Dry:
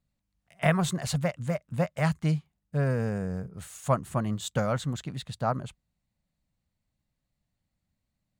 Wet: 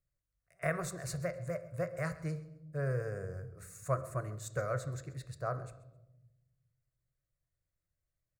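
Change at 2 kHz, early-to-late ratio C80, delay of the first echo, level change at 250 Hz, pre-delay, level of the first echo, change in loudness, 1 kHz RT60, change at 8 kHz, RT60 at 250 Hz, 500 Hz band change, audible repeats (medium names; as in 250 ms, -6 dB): -7.0 dB, 15.5 dB, 132 ms, -14.0 dB, 3 ms, -20.0 dB, -9.0 dB, 0.75 s, -7.5 dB, 1.5 s, -6.0 dB, 2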